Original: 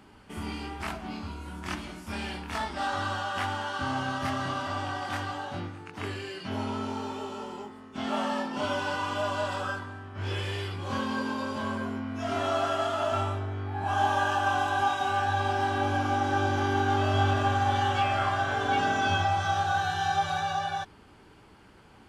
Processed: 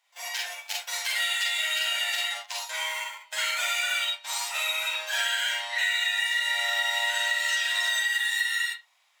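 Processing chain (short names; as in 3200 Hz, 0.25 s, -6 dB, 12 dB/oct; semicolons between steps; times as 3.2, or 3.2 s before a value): AGC gain up to 4 dB; dynamic EQ 480 Hz, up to -5 dB, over -41 dBFS, Q 3; gate -33 dBFS, range -16 dB; inverse Chebyshev high-pass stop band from 160 Hz, stop band 40 dB; reverb RT60 0.50 s, pre-delay 88 ms, DRR -1 dB; wide varispeed 2.4×; tilt shelf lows -4 dB; compressor, threshold -20 dBFS, peak gain reduction 9 dB; gain -3.5 dB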